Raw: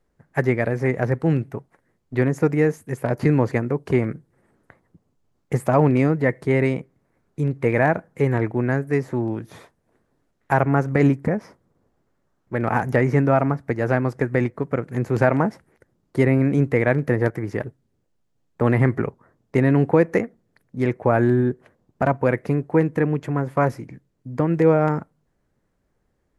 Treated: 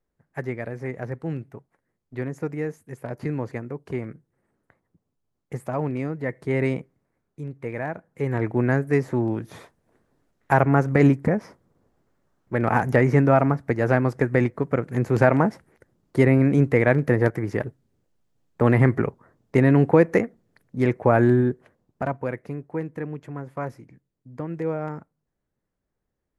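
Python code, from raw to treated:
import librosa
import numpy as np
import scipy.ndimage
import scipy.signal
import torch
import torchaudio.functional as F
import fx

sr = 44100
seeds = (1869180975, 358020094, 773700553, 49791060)

y = fx.gain(x, sr, db=fx.line((6.14, -10.0), (6.73, -2.0), (7.42, -11.5), (7.97, -11.5), (8.57, 0.5), (21.32, 0.5), (22.49, -11.0)))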